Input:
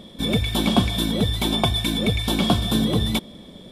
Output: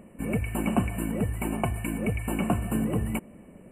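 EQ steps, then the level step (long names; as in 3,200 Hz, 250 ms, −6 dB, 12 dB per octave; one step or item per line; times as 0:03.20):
linear-phase brick-wall band-stop 3,000–7,200 Hz
−6.0 dB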